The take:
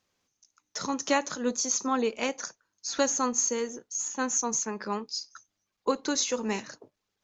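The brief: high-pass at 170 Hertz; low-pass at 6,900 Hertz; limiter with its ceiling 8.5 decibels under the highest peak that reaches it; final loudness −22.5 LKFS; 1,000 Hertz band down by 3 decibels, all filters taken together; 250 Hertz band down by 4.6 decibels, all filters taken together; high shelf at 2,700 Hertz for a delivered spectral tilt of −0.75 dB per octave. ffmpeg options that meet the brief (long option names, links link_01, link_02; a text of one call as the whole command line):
ffmpeg -i in.wav -af "highpass=170,lowpass=6900,equalizer=frequency=250:width_type=o:gain=-4,equalizer=frequency=1000:width_type=o:gain=-4,highshelf=frequency=2700:gain=3.5,volume=10dB,alimiter=limit=-12dB:level=0:latency=1" out.wav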